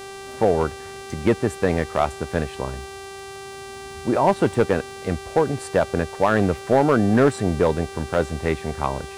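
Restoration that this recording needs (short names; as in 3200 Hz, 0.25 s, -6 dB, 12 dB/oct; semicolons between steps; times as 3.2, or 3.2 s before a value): clip repair -8.5 dBFS; de-click; de-hum 391.3 Hz, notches 28; expander -29 dBFS, range -21 dB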